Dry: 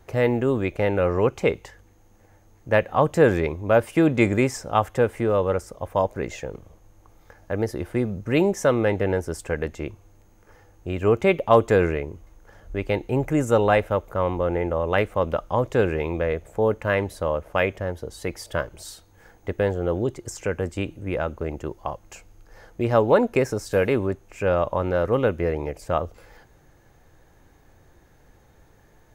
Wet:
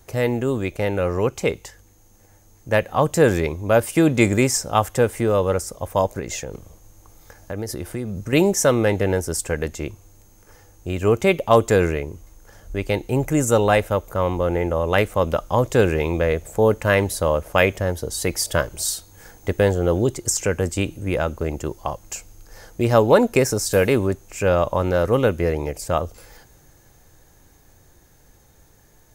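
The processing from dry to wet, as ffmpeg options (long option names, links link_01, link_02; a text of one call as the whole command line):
ffmpeg -i in.wav -filter_complex "[0:a]asettb=1/sr,asplit=3[link_01][link_02][link_03];[link_01]atrim=end=6.194[link_04];[link_02]atrim=start=6.19:end=8.33,asetpts=PTS-STARTPTS,afade=type=in:duration=0.004:curve=qsin,afade=type=out:start_time=2.136:duration=0.004:curve=qsin,acompressor=threshold=-29dB:ratio=3:attack=3.2:release=140:knee=1:detection=peak[link_05];[link_03]atrim=start=8.326[link_06];[link_04][link_05]acrossfade=duration=0.004:curve1=hsin:curve2=qsin[link_07];[link_07][link_06]acrossfade=duration=0.004:curve1=qsin:curve2=hsin,bass=frequency=250:gain=2,treble=frequency=4000:gain=13,dynaudnorm=framelen=370:gausssize=17:maxgain=11.5dB,volume=-1dB" out.wav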